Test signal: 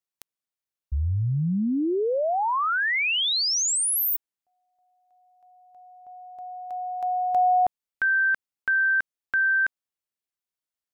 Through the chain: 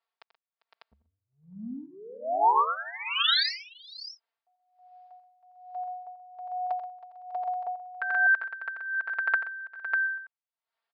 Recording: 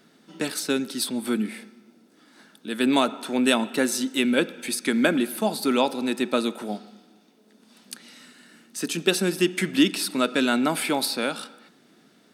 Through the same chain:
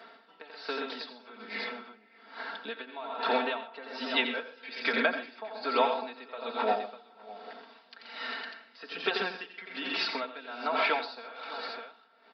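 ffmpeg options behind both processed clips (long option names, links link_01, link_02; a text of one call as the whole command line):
ffmpeg -i in.wav -af "equalizer=frequency=820:width_type=o:width=2.2:gain=8,acompressor=threshold=-34dB:ratio=6:attack=30:release=357:knee=6:detection=peak,aresample=11025,aresample=44100,highshelf=frequency=3900:gain=-7.5,aecho=1:1:4.4:0.94,aecho=1:1:87|129|398|509|598:0.447|0.355|0.119|0.188|0.299,dynaudnorm=framelen=100:gausssize=31:maxgain=4.5dB,highpass=630,aeval=exprs='val(0)*pow(10,-19*(0.5-0.5*cos(2*PI*1.2*n/s))/20)':channel_layout=same,volume=5.5dB" out.wav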